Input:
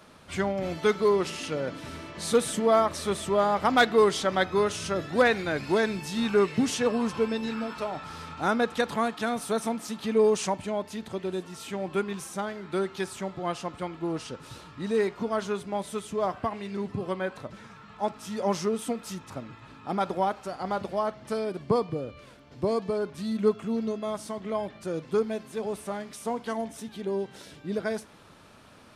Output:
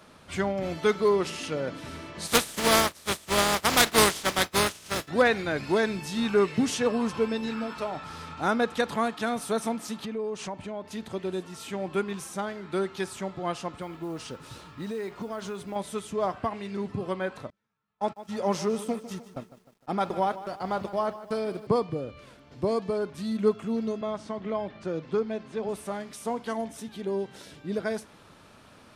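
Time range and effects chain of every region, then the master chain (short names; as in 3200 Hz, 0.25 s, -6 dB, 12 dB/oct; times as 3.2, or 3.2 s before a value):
2.26–5.07 spectral contrast lowered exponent 0.4 + expander -27 dBFS
10.05–10.91 LPF 3400 Hz 6 dB/oct + compressor 2.5:1, threshold -34 dBFS
13.81–15.76 compressor 4:1, threshold -31 dBFS + modulation noise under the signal 30 dB
17.5–21.67 gate -39 dBFS, range -35 dB + lo-fi delay 0.152 s, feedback 55%, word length 9-bit, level -14.5 dB
24.01–25.69 air absorption 110 m + three-band squash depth 40%
whole clip: dry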